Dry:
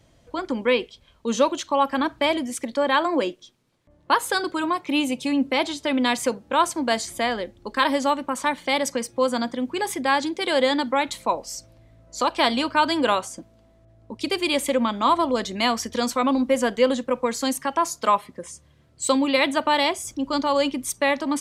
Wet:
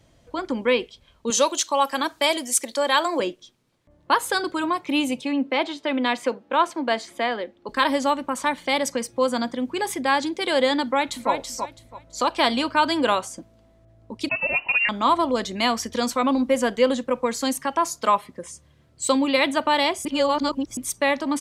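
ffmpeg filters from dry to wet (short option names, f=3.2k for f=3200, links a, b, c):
-filter_complex "[0:a]asettb=1/sr,asplit=3[a][b][c];[a]atrim=end=1.304[d];[b]atrim=start=1.3:end=3.2,asetpts=PTS-STARTPTS,afade=t=in:d=0.004:c=qsin,afade=t=out:st=1.896:d=0.004:c=qsin,bass=f=250:g=-14,treble=f=4k:g=13[e];[c]atrim=start=3.196[f];[d][e]acrossfade=d=0.004:c1=hsin:c2=qsin[g];[g][f]acrossfade=d=0.004:c1=qsin:c2=hsin,asettb=1/sr,asplit=3[h][i][j];[h]atrim=end=5.214[k];[i]atrim=start=5.21:end=7.69,asetpts=PTS-STARTPTS,afade=t=in:d=0.004:c=qsin,afade=t=out:st=2.476:d=0.004:c=qsin,acrossover=split=200 4100:gain=0.0891 1 0.2[l][m][n];[l][m][n]amix=inputs=3:normalize=0[o];[j]atrim=start=7.686[p];[k][o]acrossfade=d=0.004:c1=hsin:c2=qsin[q];[q][p]acrossfade=d=0.004:c1=qsin:c2=hsin,asplit=2[r][s];[s]afade=t=in:st=10.83:d=0.01,afade=t=out:st=11.32:d=0.01,aecho=0:1:330|660|990:0.473151|0.118288|0.029572[t];[r][t]amix=inputs=2:normalize=0,asettb=1/sr,asplit=3[u][v][w];[u]atrim=end=14.294[x];[v]atrim=start=14.29:end=14.89,asetpts=PTS-STARTPTS,afade=t=in:d=0.004:c=qsin,afade=t=out:st=0.596:d=0.004:c=qsin,lowpass=f=2.6k:t=q:w=0.5098,lowpass=f=2.6k:t=q:w=0.6013,lowpass=f=2.6k:t=q:w=0.9,lowpass=f=2.6k:t=q:w=2.563,afreqshift=-3000[y];[w]atrim=start=14.886[z];[x][y]acrossfade=d=0.004:c1=hsin:c2=qsin[aa];[aa][z]acrossfade=d=0.004:c1=qsin:c2=hsin,asplit=3[ab][ac][ad];[ab]atrim=end=20.052[ae];[ac]atrim=start=20.048:end=20.772,asetpts=PTS-STARTPTS,areverse[af];[ad]atrim=start=20.768[ag];[ae][af]acrossfade=d=0.004:c1=hsin:c2=hsin[ah];[ah][ag]acrossfade=d=0.004:c1=hsin:c2=hsin"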